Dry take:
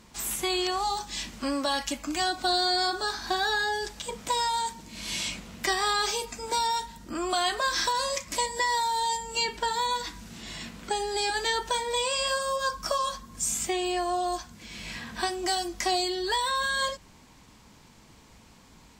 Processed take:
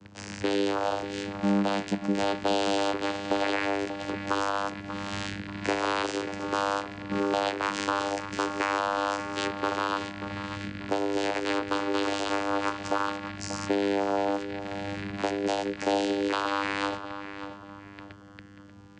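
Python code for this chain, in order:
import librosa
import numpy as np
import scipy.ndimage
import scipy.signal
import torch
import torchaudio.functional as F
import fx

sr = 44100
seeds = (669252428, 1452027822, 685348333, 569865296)

y = fx.rattle_buzz(x, sr, strikes_db=-50.0, level_db=-20.0)
y = fx.vocoder(y, sr, bands=8, carrier='saw', carrier_hz=99.9)
y = fx.echo_filtered(y, sr, ms=587, feedback_pct=40, hz=3300.0, wet_db=-10)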